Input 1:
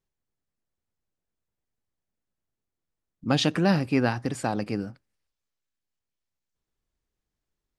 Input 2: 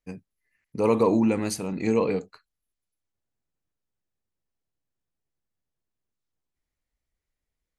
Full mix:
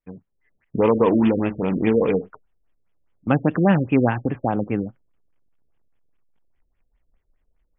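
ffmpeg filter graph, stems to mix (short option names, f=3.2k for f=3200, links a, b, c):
-filter_complex "[0:a]agate=range=-18dB:threshold=-33dB:ratio=16:detection=peak,volume=-6dB[a];[1:a]asubboost=boost=3:cutoff=52,acompressor=threshold=-29dB:ratio=2,acrusher=bits=3:mode=log:mix=0:aa=0.000001,volume=-1.5dB[b];[a][b]amix=inputs=2:normalize=0,dynaudnorm=f=200:g=3:m=12dB,afftfilt=real='re*lt(b*sr/1024,590*pow(3600/590,0.5+0.5*sin(2*PI*4.9*pts/sr)))':imag='im*lt(b*sr/1024,590*pow(3600/590,0.5+0.5*sin(2*PI*4.9*pts/sr)))':win_size=1024:overlap=0.75"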